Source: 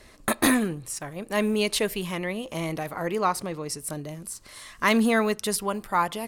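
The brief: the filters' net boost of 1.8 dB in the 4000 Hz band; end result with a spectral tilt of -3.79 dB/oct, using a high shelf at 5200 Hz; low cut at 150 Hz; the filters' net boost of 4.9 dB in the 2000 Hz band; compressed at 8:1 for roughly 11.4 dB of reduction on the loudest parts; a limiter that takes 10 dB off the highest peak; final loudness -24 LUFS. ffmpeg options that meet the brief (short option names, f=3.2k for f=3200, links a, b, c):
-af "highpass=150,equalizer=f=2k:t=o:g=6,equalizer=f=4k:t=o:g=3,highshelf=f=5.2k:g=-7,acompressor=threshold=-26dB:ratio=8,volume=9.5dB,alimiter=limit=-12dB:level=0:latency=1"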